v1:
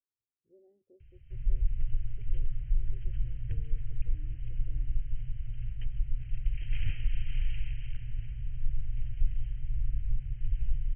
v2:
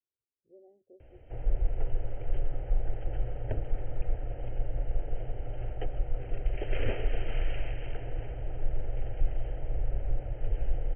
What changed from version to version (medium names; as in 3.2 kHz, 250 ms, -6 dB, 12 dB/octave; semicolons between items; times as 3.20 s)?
background: remove FFT filter 150 Hz 0 dB, 420 Hz -28 dB, 2.5 kHz -2 dB; master: add peaking EQ 720 Hz +13 dB 1.3 oct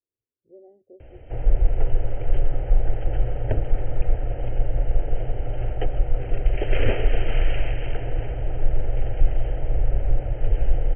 speech +8.0 dB; background +9.5 dB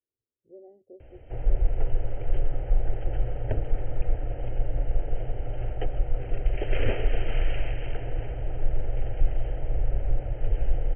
background -4.5 dB